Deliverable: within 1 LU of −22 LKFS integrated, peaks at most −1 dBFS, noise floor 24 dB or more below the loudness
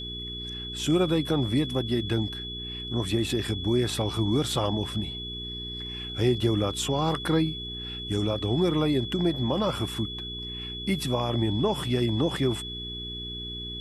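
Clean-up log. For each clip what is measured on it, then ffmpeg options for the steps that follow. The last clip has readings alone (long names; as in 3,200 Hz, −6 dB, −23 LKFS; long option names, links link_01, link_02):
mains hum 60 Hz; hum harmonics up to 420 Hz; level of the hum −38 dBFS; interfering tone 3,400 Hz; level of the tone −35 dBFS; integrated loudness −27.5 LKFS; sample peak −12.0 dBFS; target loudness −22.0 LKFS
→ -af "bandreject=frequency=60:width_type=h:width=4,bandreject=frequency=120:width_type=h:width=4,bandreject=frequency=180:width_type=h:width=4,bandreject=frequency=240:width_type=h:width=4,bandreject=frequency=300:width_type=h:width=4,bandreject=frequency=360:width_type=h:width=4,bandreject=frequency=420:width_type=h:width=4"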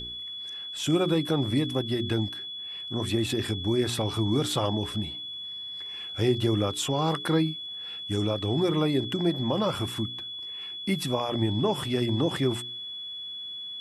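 mains hum none found; interfering tone 3,400 Hz; level of the tone −35 dBFS
→ -af "bandreject=frequency=3400:width=30"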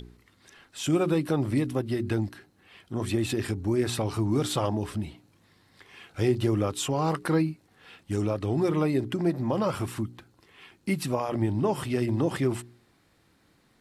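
interfering tone none found; integrated loudness −28.0 LKFS; sample peak −12.5 dBFS; target loudness −22.0 LKFS
→ -af "volume=6dB"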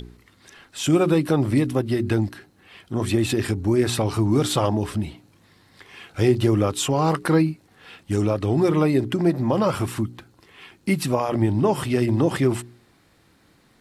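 integrated loudness −22.0 LKFS; sample peak −6.5 dBFS; background noise floor −59 dBFS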